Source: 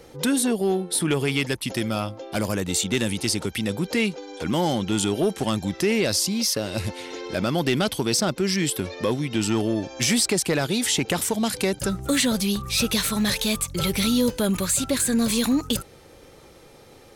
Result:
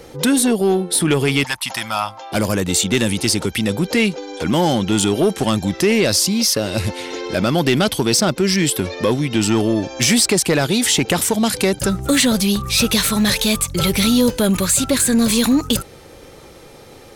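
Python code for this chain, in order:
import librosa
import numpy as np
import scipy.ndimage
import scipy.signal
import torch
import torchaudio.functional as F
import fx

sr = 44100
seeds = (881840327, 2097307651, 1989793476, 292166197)

p1 = fx.low_shelf_res(x, sr, hz=610.0, db=-12.5, q=3.0, at=(1.44, 2.32))
p2 = 10.0 ** (-22.0 / 20.0) * np.tanh(p1 / 10.0 ** (-22.0 / 20.0))
p3 = p1 + F.gain(torch.from_numpy(p2), -7.5).numpy()
y = F.gain(torch.from_numpy(p3), 4.5).numpy()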